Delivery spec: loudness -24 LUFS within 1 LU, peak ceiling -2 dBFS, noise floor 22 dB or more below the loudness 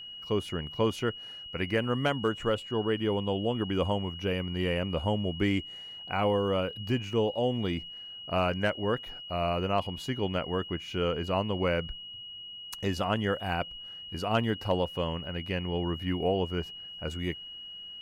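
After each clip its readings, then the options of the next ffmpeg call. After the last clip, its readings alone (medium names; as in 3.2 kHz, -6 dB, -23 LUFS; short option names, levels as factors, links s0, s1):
steady tone 2.9 kHz; tone level -41 dBFS; loudness -31.0 LUFS; peak level -15.0 dBFS; loudness target -24.0 LUFS
-> -af "bandreject=f=2900:w=30"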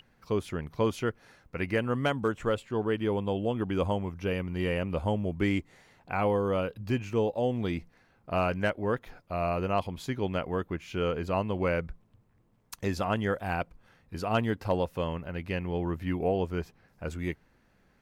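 steady tone not found; loudness -31.0 LUFS; peak level -15.0 dBFS; loudness target -24.0 LUFS
-> -af "volume=2.24"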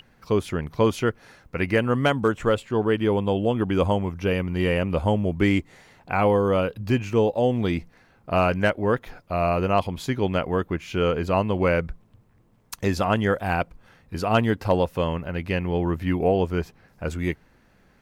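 loudness -24.0 LUFS; peak level -8.0 dBFS; noise floor -59 dBFS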